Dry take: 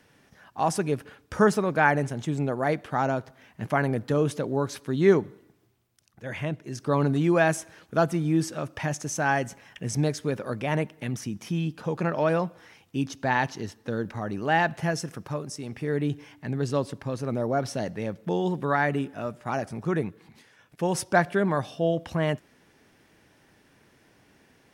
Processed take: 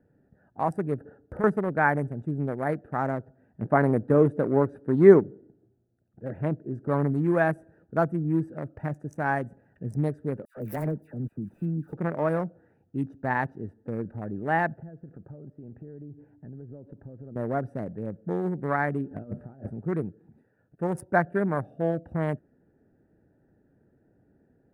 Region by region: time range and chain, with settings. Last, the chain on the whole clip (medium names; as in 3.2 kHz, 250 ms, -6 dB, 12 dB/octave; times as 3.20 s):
1.00–1.44 s: peaking EQ 670 Hz +7 dB 2.6 oct + band-stop 2.4 kHz, Q 6.4 + compression 3:1, threshold -29 dBFS
3.61–6.88 s: careless resampling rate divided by 2×, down none, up filtered + peaking EQ 400 Hz +6.5 dB 2.9 oct
10.45–11.93 s: dead-time distortion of 0.14 ms + treble shelf 5.7 kHz +12 dB + phase dispersion lows, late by 116 ms, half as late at 1.5 kHz
14.74–17.36 s: compression 8:1, threshold -36 dBFS + distance through air 390 m
19.11–19.70 s: bass shelf 230 Hz +8 dB + doubling 29 ms -7.5 dB + compressor with a negative ratio -34 dBFS, ratio -0.5
whole clip: local Wiener filter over 41 samples; high-order bell 4.2 kHz -15 dB; trim -1 dB